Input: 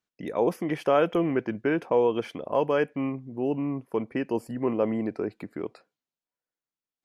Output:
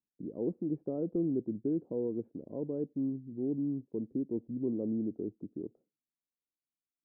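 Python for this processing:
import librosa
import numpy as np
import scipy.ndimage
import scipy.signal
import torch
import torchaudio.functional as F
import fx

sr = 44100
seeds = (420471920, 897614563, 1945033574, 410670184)

y = fx.ladder_lowpass(x, sr, hz=400.0, resonance_pct=30)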